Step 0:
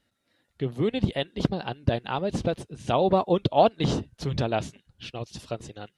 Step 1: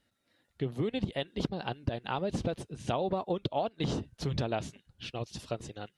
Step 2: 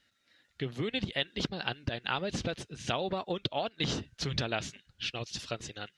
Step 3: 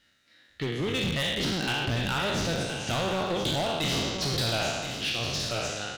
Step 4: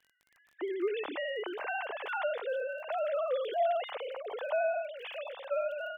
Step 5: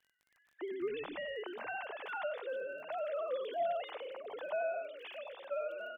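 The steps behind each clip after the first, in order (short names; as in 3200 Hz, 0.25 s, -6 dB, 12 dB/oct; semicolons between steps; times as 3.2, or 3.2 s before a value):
compressor 12:1, threshold -25 dBFS, peak gain reduction 13 dB; gain -2 dB
band shelf 3100 Hz +10 dB 2.7 oct; gain -2.5 dB
spectral trails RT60 1.39 s; hard clip -27.5 dBFS, distortion -10 dB; echo 1.02 s -9 dB; gain +3 dB
sine-wave speech; band-pass 710 Hz, Q 0.83; crackle 19/s -46 dBFS; gain -3 dB
frequency-shifting echo 95 ms, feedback 35%, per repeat -120 Hz, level -17.5 dB; gain -5.5 dB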